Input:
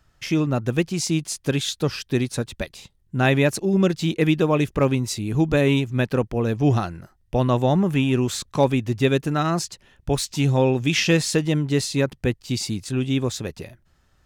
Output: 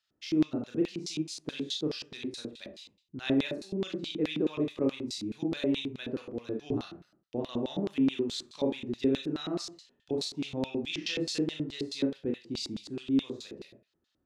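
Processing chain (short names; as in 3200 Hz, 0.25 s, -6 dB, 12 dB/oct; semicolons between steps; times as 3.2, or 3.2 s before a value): Schroeder reverb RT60 0.37 s, combs from 26 ms, DRR 0.5 dB; LFO band-pass square 4.7 Hz 320–3900 Hz; gain -5.5 dB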